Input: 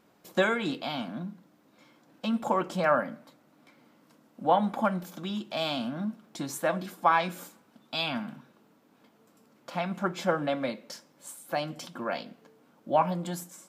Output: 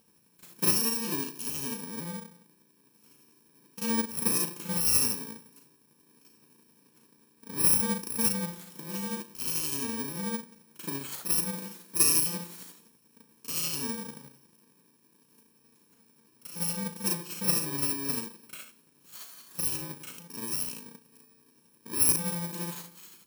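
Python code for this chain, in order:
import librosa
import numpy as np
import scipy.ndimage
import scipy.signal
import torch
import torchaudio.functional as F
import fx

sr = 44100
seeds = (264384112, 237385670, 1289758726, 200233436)

y = fx.bit_reversed(x, sr, seeds[0], block=64)
y = fx.stretch_grains(y, sr, factor=1.7, grain_ms=174.0)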